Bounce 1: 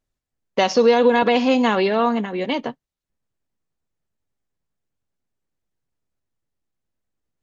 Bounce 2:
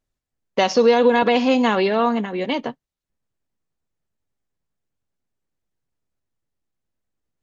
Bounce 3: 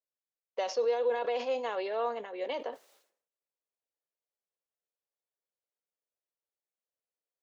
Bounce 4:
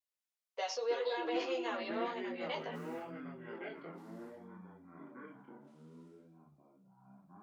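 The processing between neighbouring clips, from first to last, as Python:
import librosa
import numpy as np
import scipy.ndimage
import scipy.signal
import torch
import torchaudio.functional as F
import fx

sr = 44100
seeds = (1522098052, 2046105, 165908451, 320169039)

y1 = x
y2 = fx.rider(y1, sr, range_db=3, speed_s=0.5)
y2 = fx.ladder_highpass(y2, sr, hz=430.0, resonance_pct=50)
y2 = fx.sustainer(y2, sr, db_per_s=110.0)
y2 = y2 * librosa.db_to_amplitude(-8.0)
y3 = fx.highpass(y2, sr, hz=1000.0, slope=6)
y3 = fx.chorus_voices(y3, sr, voices=6, hz=0.57, base_ms=16, depth_ms=4.0, mix_pct=45)
y3 = fx.echo_pitch(y3, sr, ms=82, semitones=-6, count=3, db_per_echo=-6.0)
y3 = y3 * librosa.db_to_amplitude(2.5)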